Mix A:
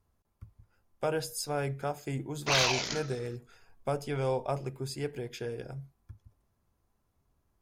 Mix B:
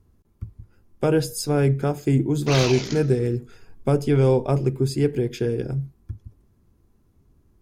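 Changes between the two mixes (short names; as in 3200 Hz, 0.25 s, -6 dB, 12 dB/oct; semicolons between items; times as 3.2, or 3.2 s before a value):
speech +6.5 dB; master: add resonant low shelf 480 Hz +8.5 dB, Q 1.5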